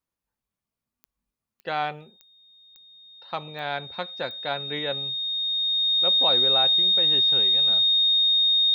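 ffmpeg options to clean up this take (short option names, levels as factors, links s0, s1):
-af "adeclick=t=4,bandreject=f=3700:w=30"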